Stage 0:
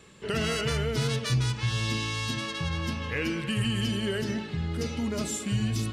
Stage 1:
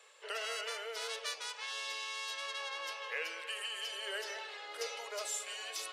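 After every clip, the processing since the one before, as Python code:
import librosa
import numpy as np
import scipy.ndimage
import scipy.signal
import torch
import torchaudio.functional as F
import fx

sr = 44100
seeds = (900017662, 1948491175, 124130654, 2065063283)

y = scipy.signal.sosfilt(scipy.signal.butter(8, 480.0, 'highpass', fs=sr, output='sos'), x)
y = fx.rider(y, sr, range_db=4, speed_s=0.5)
y = y * 10.0 ** (-5.5 / 20.0)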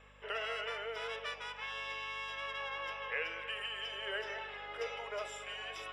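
y = scipy.signal.savgol_filter(x, 25, 4, mode='constant')
y = fx.add_hum(y, sr, base_hz=50, snr_db=22)
y = y * 10.0 ** (2.0 / 20.0)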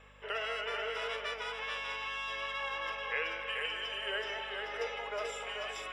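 y = x + 10.0 ** (-4.5 / 20.0) * np.pad(x, (int(436 * sr / 1000.0), 0))[:len(x)]
y = y * 10.0 ** (2.0 / 20.0)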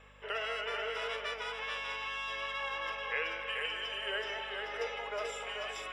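y = x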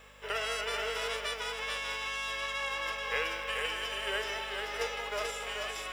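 y = fx.envelope_flatten(x, sr, power=0.6)
y = y * 10.0 ** (2.5 / 20.0)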